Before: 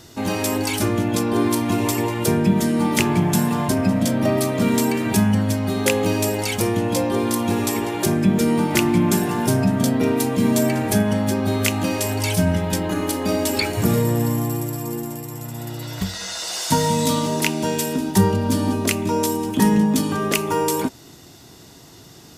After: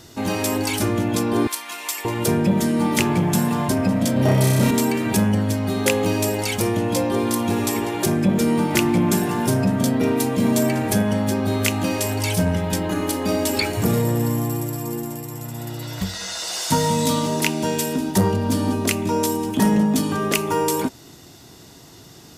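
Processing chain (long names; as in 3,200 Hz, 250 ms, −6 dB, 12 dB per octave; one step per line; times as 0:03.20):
0:01.47–0:02.05: high-pass filter 1,400 Hz 12 dB per octave
0:04.13–0:04.71: flutter between parallel walls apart 5.3 metres, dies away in 1.4 s
saturating transformer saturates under 370 Hz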